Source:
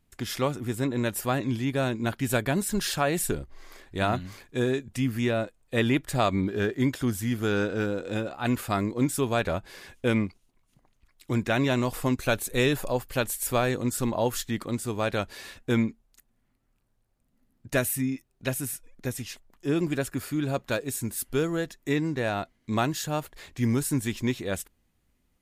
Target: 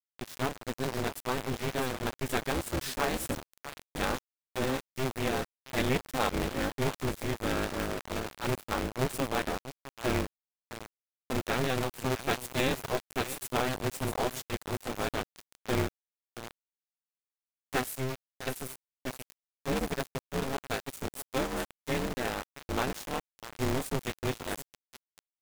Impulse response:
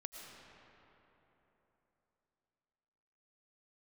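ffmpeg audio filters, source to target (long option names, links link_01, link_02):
-af "highshelf=frequency=8900:gain=-4,aecho=1:1:653|1306|1959|2612:0.282|0.118|0.0497|0.0209,aeval=exprs='val(0)*gte(abs(val(0)),0.0398)':channel_layout=same,aeval=exprs='val(0)*sgn(sin(2*PI*130*n/s))':channel_layout=same,volume=-5dB"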